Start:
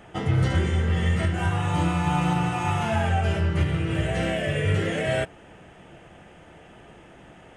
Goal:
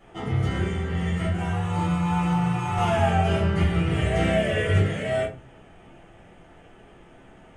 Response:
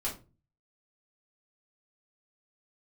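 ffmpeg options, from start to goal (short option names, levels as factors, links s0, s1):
-filter_complex "[0:a]asettb=1/sr,asplit=3[s0][s1][s2];[s0]atrim=end=2.774[s3];[s1]atrim=start=2.77:end=4.79,asetpts=PTS-STARTPTS,afade=t=in:d=0.004:c=qsin,afade=t=out:st=2.016:d=0.004:c=qsin,acontrast=32[s4];[s2]atrim=start=4.786[s5];[s3][s4]acrossfade=d=0.004:c1=hsin:c2=qsin[s6];[s6][s5]acrossfade=d=0.004:c1=qsin:c2=hsin[s7];[1:a]atrim=start_sample=2205[s8];[s7][s8]afir=irnorm=-1:irlink=0,volume=0.473"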